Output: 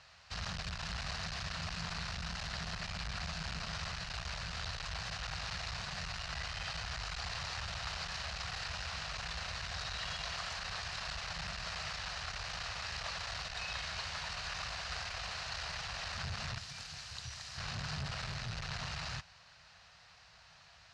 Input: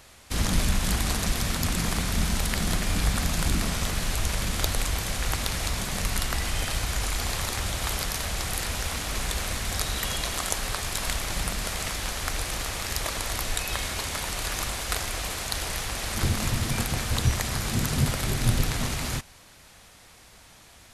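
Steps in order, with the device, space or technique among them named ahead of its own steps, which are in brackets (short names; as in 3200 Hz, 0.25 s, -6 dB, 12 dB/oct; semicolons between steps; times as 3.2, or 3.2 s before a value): 16.58–17.58 pre-emphasis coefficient 0.8; scooped metal amplifier (tube stage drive 28 dB, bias 0.45; speaker cabinet 81–4400 Hz, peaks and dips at 160 Hz +7 dB, 680 Hz +4 dB, 2200 Hz -7 dB, 3400 Hz -10 dB; passive tone stack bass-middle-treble 10-0-10); gain +4.5 dB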